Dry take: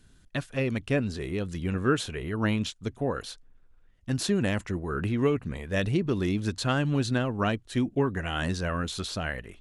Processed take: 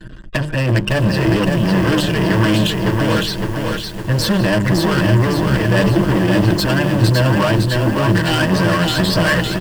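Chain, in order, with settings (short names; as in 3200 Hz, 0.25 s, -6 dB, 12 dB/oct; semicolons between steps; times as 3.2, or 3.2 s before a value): high shelf 3400 Hz -9.5 dB; notches 50/100/150/200/250/300/350 Hz; comb 6.4 ms, depth 88%; loudest bins only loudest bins 64; in parallel at +2.5 dB: negative-ratio compressor -30 dBFS, ratio -0.5; on the sum: sample leveller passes 5; ripple EQ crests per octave 1.3, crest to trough 7 dB; added harmonics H 2 -14 dB, 3 -16 dB, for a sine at -4 dBFS; lo-fi delay 0.559 s, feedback 55%, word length 6-bit, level -3.5 dB; gain -1 dB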